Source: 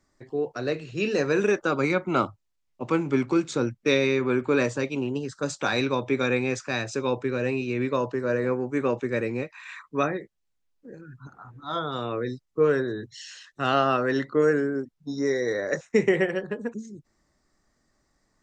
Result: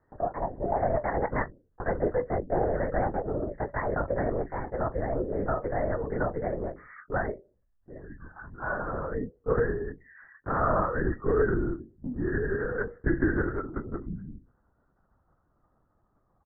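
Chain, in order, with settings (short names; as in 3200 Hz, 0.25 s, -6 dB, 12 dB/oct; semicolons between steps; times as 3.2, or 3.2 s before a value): speed glide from 161% -> 63%; steep low-pass 1900 Hz 96 dB/oct; in parallel at -1.5 dB: compressor, threshold -34 dBFS, peak gain reduction 17 dB; on the sum: notches 60/120/180/240/300/360/420/480/540/600 Hz; doubler 23 ms -10.5 dB; LPC vocoder at 8 kHz whisper; gain -4.5 dB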